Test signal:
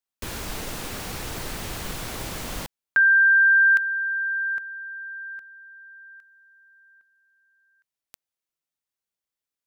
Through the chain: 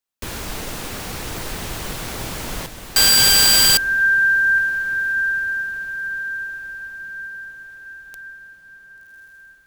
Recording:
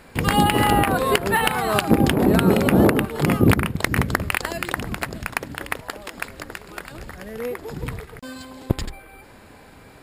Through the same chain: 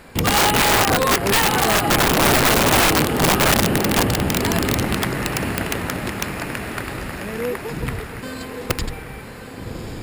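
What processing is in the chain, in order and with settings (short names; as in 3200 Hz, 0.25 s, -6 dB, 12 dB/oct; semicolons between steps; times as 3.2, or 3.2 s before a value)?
diffused feedback echo 1.134 s, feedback 51%, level -8 dB; wrapped overs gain 13.5 dB; gain +3.5 dB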